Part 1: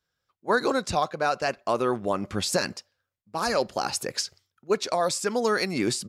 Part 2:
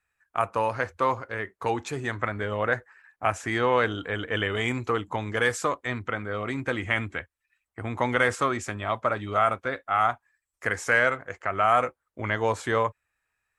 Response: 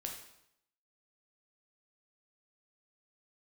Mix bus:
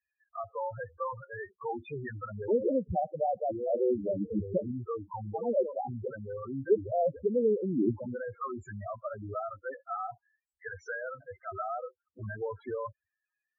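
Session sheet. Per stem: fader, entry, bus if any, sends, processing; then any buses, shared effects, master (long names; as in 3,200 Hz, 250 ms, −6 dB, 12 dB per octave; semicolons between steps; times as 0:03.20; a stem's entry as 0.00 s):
+0.5 dB, 2.00 s, no send, no processing
−3.0 dB, 0.00 s, no send, high-pass filter 54 Hz 12 dB per octave; downward compressor 5 to 1, threshold −24 dBFS, peak gain reduction 8 dB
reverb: not used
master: treble cut that deepens with the level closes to 730 Hz, closed at −24 dBFS; spectral peaks only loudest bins 4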